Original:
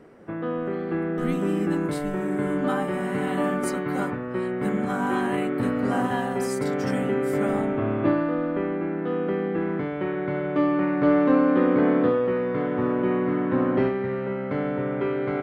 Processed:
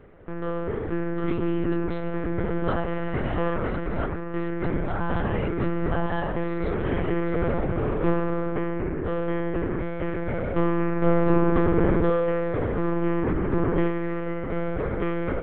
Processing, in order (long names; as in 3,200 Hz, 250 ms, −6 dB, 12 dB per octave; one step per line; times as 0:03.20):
one-pitch LPC vocoder at 8 kHz 170 Hz